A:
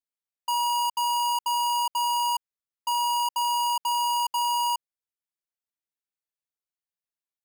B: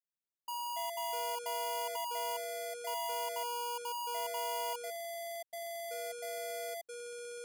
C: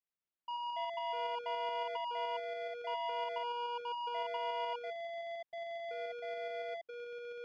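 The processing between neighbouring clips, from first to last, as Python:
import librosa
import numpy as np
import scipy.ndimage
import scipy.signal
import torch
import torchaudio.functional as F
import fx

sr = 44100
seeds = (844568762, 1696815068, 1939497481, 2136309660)

y1 = fx.graphic_eq(x, sr, hz=(1000, 2000, 4000, 8000), db=(-5, -9, -4, -7))
y1 = fx.echo_pitch(y1, sr, ms=84, semitones=-6, count=2, db_per_echo=-3.0)
y1 = y1 * librosa.db_to_amplitude(-7.5)
y2 = scipy.signal.sosfilt(scipy.signal.butter(4, 3300.0, 'lowpass', fs=sr, output='sos'), y1)
y2 = fx.tremolo_shape(y2, sr, shape='saw_up', hz=7.1, depth_pct=30)
y2 = y2 * librosa.db_to_amplitude(1.5)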